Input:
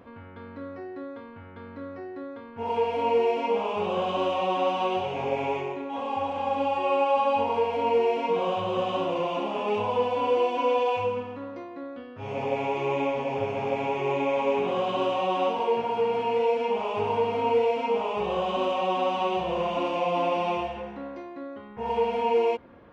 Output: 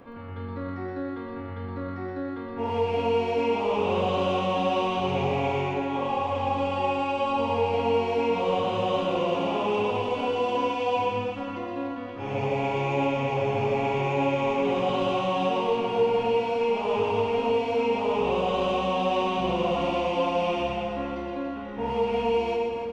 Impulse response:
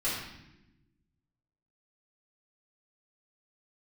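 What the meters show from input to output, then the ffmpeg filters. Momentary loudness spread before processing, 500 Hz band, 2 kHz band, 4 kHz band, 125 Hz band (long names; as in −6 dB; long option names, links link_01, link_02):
15 LU, +0.5 dB, +2.0 dB, +2.5 dB, +7.5 dB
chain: -filter_complex "[0:a]acrossover=split=290|3000[link_01][link_02][link_03];[link_02]acompressor=threshold=-30dB:ratio=3[link_04];[link_01][link_04][link_03]amix=inputs=3:normalize=0,aecho=1:1:120|288|523.2|852.5|1313:0.631|0.398|0.251|0.158|0.1,asplit=2[link_05][link_06];[1:a]atrim=start_sample=2205,lowshelf=frequency=80:gain=9.5[link_07];[link_06][link_07]afir=irnorm=-1:irlink=0,volume=-10.5dB[link_08];[link_05][link_08]amix=inputs=2:normalize=0"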